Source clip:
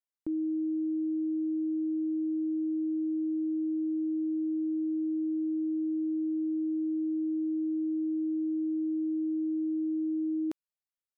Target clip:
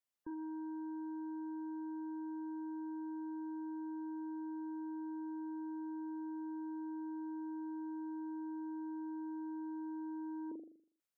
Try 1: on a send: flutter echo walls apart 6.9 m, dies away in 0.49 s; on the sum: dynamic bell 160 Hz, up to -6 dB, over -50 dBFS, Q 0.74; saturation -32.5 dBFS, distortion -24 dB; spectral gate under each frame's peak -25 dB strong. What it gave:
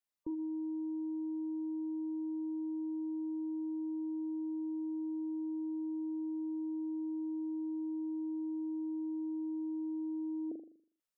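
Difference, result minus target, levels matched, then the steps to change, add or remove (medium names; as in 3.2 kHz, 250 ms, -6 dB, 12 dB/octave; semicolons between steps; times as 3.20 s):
saturation: distortion -11 dB
change: saturation -41.5 dBFS, distortion -13 dB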